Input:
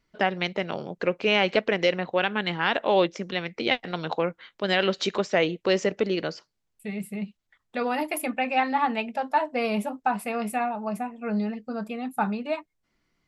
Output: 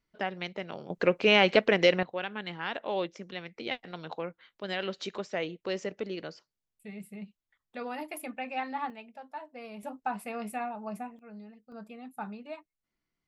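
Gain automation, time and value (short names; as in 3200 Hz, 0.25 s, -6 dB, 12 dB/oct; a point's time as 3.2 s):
-9 dB
from 0.9 s +0.5 dB
from 2.03 s -10.5 dB
from 8.9 s -18 dB
from 9.83 s -8 dB
from 11.19 s -20 dB
from 11.72 s -13 dB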